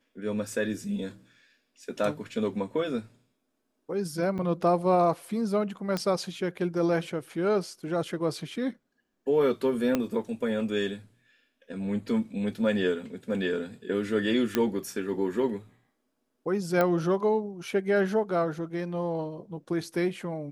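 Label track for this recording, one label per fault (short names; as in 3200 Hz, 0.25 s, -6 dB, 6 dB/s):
4.380000	4.390000	gap 6.3 ms
5.970000	5.970000	pop -16 dBFS
9.950000	9.950000	pop -12 dBFS
14.550000	14.550000	pop -10 dBFS
16.810000	16.810000	pop -13 dBFS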